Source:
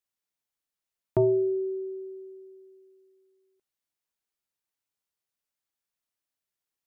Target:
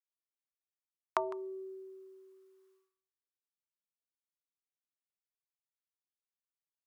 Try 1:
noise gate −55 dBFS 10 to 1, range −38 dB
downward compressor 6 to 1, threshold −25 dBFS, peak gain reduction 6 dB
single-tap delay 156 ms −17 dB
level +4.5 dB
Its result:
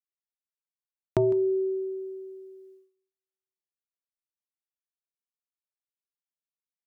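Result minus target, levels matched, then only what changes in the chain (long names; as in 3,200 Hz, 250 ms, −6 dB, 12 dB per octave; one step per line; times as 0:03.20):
1,000 Hz band −17.5 dB
add after downward compressor: high-pass with resonance 1,100 Hz, resonance Q 4.5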